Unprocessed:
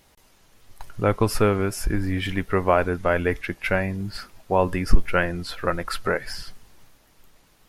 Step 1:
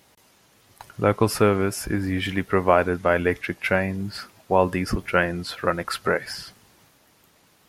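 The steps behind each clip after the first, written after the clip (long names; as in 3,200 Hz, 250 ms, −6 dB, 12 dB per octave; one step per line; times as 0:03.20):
high-pass filter 100 Hz 12 dB per octave
level +1.5 dB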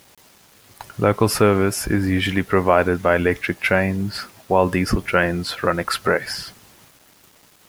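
in parallel at +2 dB: brickwall limiter −13.5 dBFS, peak gain reduction 10.5 dB
on the sum: bit-depth reduction 8 bits, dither none
level −1.5 dB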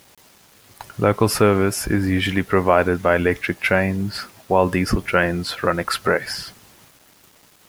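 no processing that can be heard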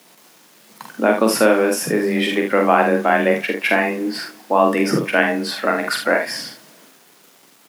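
on a send at −21.5 dB: convolution reverb RT60 1.7 s, pre-delay 4 ms
on the sum: frequency shifter +110 Hz
ambience of single reflections 45 ms −4.5 dB, 75 ms −9 dB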